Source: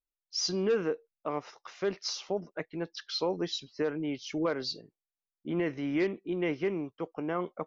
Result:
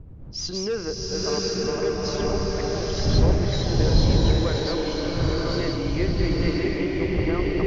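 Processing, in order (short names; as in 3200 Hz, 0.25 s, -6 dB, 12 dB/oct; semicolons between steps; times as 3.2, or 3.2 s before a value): regenerating reverse delay 0.511 s, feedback 55%, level -2 dB; wind noise 110 Hz -30 dBFS; bloom reverb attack 0.95 s, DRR -3.5 dB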